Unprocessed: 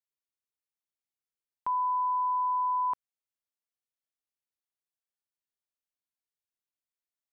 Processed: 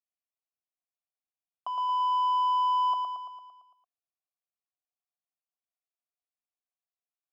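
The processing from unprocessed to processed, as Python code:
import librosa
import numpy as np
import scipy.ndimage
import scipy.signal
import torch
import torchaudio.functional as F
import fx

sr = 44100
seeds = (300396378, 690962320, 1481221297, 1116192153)

p1 = fx.leveller(x, sr, passes=2)
p2 = fx.vowel_filter(p1, sr, vowel='a')
p3 = p2 + fx.echo_feedback(p2, sr, ms=113, feedback_pct=59, wet_db=-5, dry=0)
y = p3 * 10.0 ** (7.5 / 20.0)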